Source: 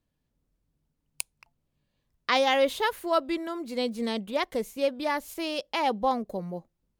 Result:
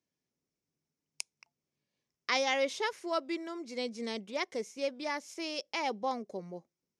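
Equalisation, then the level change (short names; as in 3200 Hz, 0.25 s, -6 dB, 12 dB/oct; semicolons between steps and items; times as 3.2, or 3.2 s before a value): speaker cabinet 160–9600 Hz, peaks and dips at 390 Hz +6 dB, 2200 Hz +7 dB, 5400 Hz +10 dB; bell 6400 Hz +6.5 dB 0.46 oct; -8.5 dB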